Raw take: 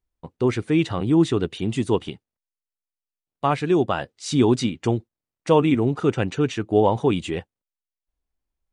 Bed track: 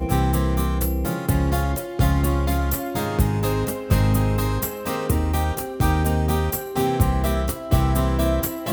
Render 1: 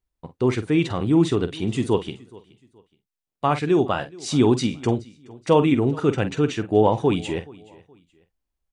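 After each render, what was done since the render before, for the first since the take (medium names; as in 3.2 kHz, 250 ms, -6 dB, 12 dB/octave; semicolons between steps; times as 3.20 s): doubling 47 ms -12 dB; feedback delay 423 ms, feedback 32%, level -23 dB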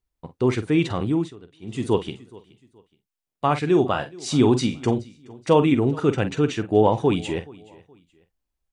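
1.01–1.92 s: dip -21.5 dB, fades 0.32 s; 3.61–5.53 s: doubling 39 ms -13 dB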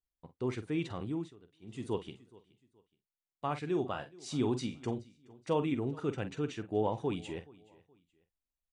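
trim -14 dB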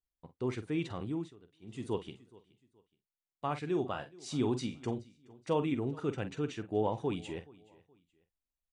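no audible change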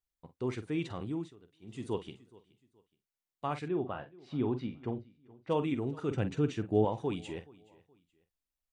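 3.68–5.50 s: distance through air 400 m; 6.11–6.85 s: bass shelf 410 Hz +8 dB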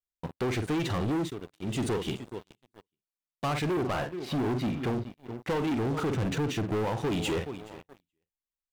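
compression 12:1, threshold -35 dBFS, peak gain reduction 14.5 dB; waveshaping leveller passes 5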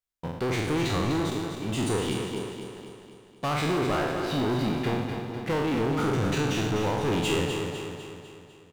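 spectral sustain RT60 1.00 s; feedback delay 250 ms, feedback 53%, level -7 dB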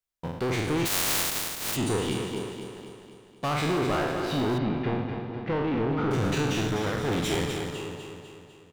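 0.85–1.75 s: spectral contrast reduction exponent 0.13; 4.58–6.11 s: distance through air 290 m; 6.68–7.75 s: comb filter that takes the minimum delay 0.54 ms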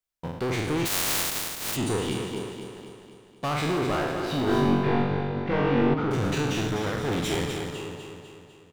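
4.45–5.94 s: flutter echo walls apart 3.6 m, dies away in 1 s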